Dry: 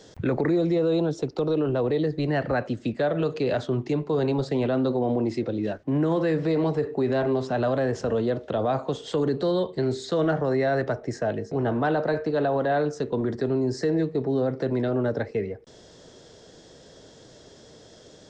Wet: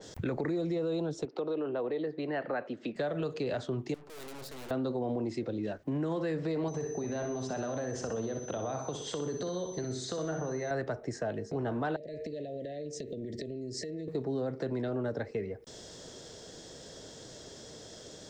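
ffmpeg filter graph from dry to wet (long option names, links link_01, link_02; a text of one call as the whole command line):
ffmpeg -i in.wav -filter_complex "[0:a]asettb=1/sr,asplit=3[link_01][link_02][link_03];[link_01]atrim=end=1.254[link_04];[link_02]atrim=start=1.25:end=2.96,asetpts=PTS-STARTPTS,afade=type=in:duration=0.004:curve=qsin,afade=type=out:start_time=1.706:duration=0.004:curve=qsin,highpass=280,lowpass=3100,acompressor=mode=upward:threshold=-40dB:ratio=2.5:attack=3.2:release=140:knee=2.83:detection=peak[link_05];[link_03]atrim=start=2.956[link_06];[link_04][link_05]acrossfade=duration=0.004:curve1=hsin:curve2=qsin[link_07];[link_07][link_06]acrossfade=duration=0.004:curve1=qsin:curve2=hsin,asettb=1/sr,asplit=3[link_08][link_09][link_10];[link_08]atrim=end=3.944[link_11];[link_09]atrim=start=3.94:end=4.71,asetpts=PTS-STARTPTS,afade=type=in:duration=0.004:curve=qsin,afade=type=out:start_time=0.766:duration=0.004:curve=qsin,highpass=frequency=220:poles=1,aeval=exprs='(tanh(178*val(0)+0.75)-tanh(0.75))/178':channel_layout=same[link_12];[link_10]atrim=start=4.706[link_13];[link_11][link_12]acrossfade=duration=0.004:curve1=hsin:curve2=qsin[link_14];[link_14][link_13]acrossfade=duration=0.004:curve1=qsin:curve2=hsin,asettb=1/sr,asplit=3[link_15][link_16][link_17];[link_15]atrim=end=6.684[link_18];[link_16]atrim=start=6.68:end=10.71,asetpts=PTS-STARTPTS,afade=type=in:duration=0.004:curve=qsin,afade=type=out:start_time=4.026:duration=0.004:curve=qsin,acompressor=threshold=-25dB:ratio=6:attack=3.2:release=140:knee=1:detection=peak,aecho=1:1:62|124|186|248|310:0.422|0.198|0.0932|0.0438|0.0206,atrim=end_sample=177723,aeval=exprs='val(0)+0.00501*sin(2*PI*6100*n/s)':channel_layout=same[link_19];[link_17]atrim=start=10.706[link_20];[link_18][link_19]acrossfade=duration=0.004:curve1=hsin:curve2=qsin[link_21];[link_21][link_20]acrossfade=duration=0.004:curve1=qsin:curve2=hsin,asettb=1/sr,asplit=3[link_22][link_23][link_24];[link_22]atrim=end=11.964[link_25];[link_23]atrim=start=11.96:end=14.08,asetpts=PTS-STARTPTS,afade=type=in:duration=0.004:curve=qsin,afade=type=out:start_time=2.116:duration=0.004:curve=qsin,acompressor=threshold=-33dB:ratio=8:attack=3.2:release=140:knee=1:detection=peak,asuperstop=centerf=1100:order=20:qfactor=0.99[link_26];[link_24]atrim=start=14.076[link_27];[link_25][link_26]acrossfade=duration=0.004:curve1=hsin:curve2=qsin[link_28];[link_28][link_27]acrossfade=duration=0.004:curve1=qsin:curve2=hsin,aemphasis=mode=production:type=50kf,acompressor=threshold=-37dB:ratio=2,adynamicequalizer=threshold=0.00251:dfrequency=2700:dqfactor=0.7:tfrequency=2700:tqfactor=0.7:attack=5:release=100:ratio=0.375:range=2:mode=cutabove:tftype=highshelf" out.wav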